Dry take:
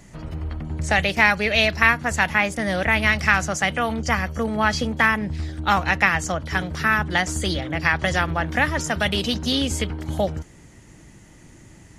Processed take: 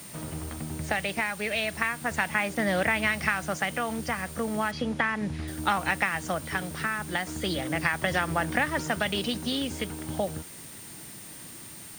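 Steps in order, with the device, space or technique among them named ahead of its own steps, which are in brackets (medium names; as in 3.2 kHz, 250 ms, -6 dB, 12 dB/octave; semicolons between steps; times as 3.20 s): medium wave at night (band-pass 130–4200 Hz; compression, threshold -21 dBFS, peak gain reduction 10.5 dB; tremolo 0.36 Hz, depth 40%; whistle 9 kHz -46 dBFS; white noise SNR 17 dB); 4.71–5.48 s: distance through air 79 m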